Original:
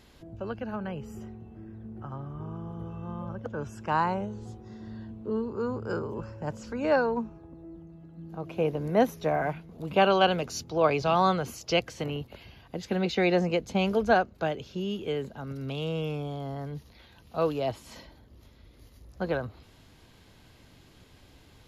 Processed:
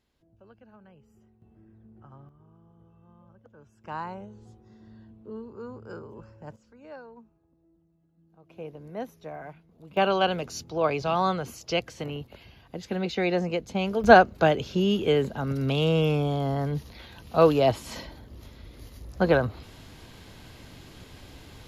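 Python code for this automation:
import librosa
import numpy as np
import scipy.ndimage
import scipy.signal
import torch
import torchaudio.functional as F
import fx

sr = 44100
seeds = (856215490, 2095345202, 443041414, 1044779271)

y = fx.gain(x, sr, db=fx.steps((0.0, -19.0), (1.42, -11.0), (2.29, -19.0), (3.84, -9.0), (6.56, -20.0), (8.5, -12.5), (9.97, -1.5), (14.04, 8.5)))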